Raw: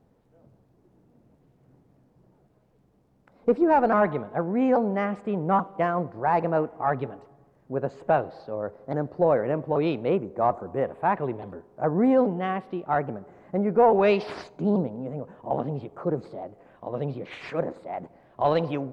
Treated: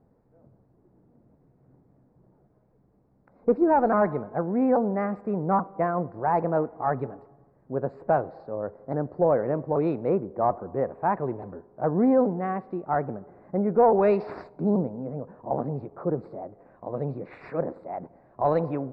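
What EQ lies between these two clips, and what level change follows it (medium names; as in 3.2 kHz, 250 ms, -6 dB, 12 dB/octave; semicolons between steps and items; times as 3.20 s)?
boxcar filter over 14 samples; 0.0 dB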